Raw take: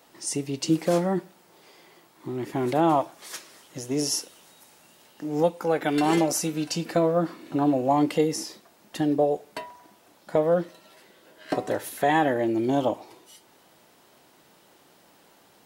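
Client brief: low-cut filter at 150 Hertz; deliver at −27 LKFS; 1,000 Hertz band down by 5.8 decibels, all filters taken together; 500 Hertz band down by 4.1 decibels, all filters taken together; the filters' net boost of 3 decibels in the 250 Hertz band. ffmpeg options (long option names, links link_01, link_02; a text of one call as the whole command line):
ffmpeg -i in.wav -af "highpass=150,equalizer=frequency=250:width_type=o:gain=7.5,equalizer=frequency=500:width_type=o:gain=-6,equalizer=frequency=1000:width_type=o:gain=-6,volume=-1.5dB" out.wav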